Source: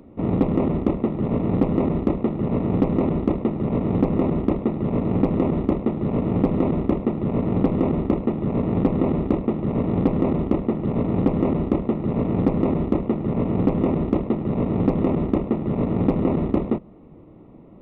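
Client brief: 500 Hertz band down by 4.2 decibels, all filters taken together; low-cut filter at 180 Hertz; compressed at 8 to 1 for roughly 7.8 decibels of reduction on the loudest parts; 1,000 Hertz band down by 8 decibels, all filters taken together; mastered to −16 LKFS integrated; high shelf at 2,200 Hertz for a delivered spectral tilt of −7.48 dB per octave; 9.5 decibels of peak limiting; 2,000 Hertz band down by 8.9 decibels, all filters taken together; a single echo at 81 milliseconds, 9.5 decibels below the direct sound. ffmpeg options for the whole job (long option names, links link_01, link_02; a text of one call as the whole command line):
ffmpeg -i in.wav -af "highpass=180,equalizer=frequency=500:width_type=o:gain=-3.5,equalizer=frequency=1000:width_type=o:gain=-7.5,equalizer=frequency=2000:width_type=o:gain=-7,highshelf=frequency=2200:gain=-3,acompressor=threshold=-26dB:ratio=8,alimiter=level_in=0.5dB:limit=-24dB:level=0:latency=1,volume=-0.5dB,aecho=1:1:81:0.335,volume=17dB" out.wav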